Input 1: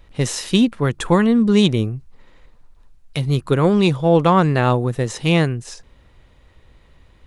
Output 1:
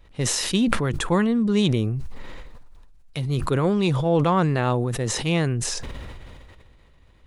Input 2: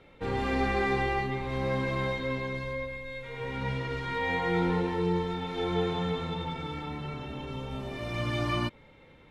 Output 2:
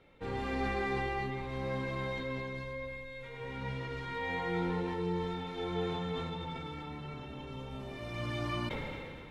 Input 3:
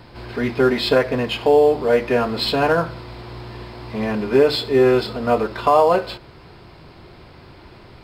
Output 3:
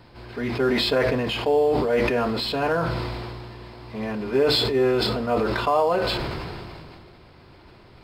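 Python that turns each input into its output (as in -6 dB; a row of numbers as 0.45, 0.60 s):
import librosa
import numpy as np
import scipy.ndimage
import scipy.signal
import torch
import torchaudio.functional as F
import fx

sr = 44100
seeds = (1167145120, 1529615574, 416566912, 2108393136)

y = fx.sustainer(x, sr, db_per_s=23.0)
y = y * 10.0 ** (-6.5 / 20.0)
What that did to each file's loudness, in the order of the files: -5.0, -6.0, -4.5 LU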